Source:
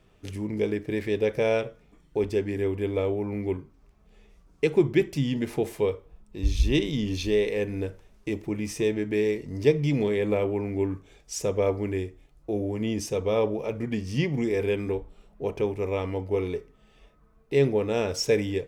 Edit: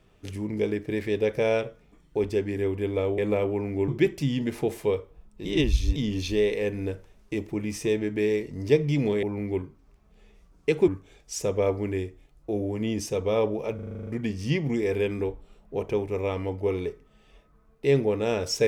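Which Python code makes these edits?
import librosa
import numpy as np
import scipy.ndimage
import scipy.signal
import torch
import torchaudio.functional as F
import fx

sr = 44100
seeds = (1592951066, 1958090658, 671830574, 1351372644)

y = fx.edit(x, sr, fx.swap(start_s=3.18, length_s=1.65, other_s=10.18, other_length_s=0.7),
    fx.reverse_span(start_s=6.4, length_s=0.51),
    fx.stutter(start_s=13.75, slice_s=0.04, count=9), tone=tone)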